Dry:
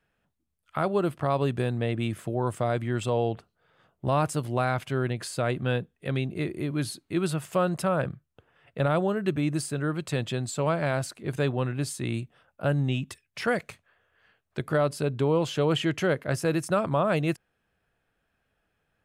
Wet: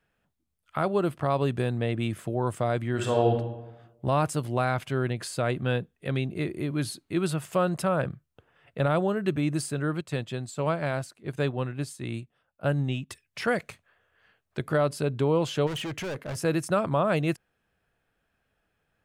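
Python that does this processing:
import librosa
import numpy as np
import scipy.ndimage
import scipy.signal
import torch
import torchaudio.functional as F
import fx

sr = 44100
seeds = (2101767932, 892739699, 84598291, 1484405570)

y = fx.reverb_throw(x, sr, start_s=2.9, length_s=0.43, rt60_s=1.0, drr_db=1.0)
y = fx.upward_expand(y, sr, threshold_db=-43.0, expansion=1.5, at=(10.01, 13.1))
y = fx.clip_hard(y, sr, threshold_db=-31.0, at=(15.66, 16.35), fade=0.02)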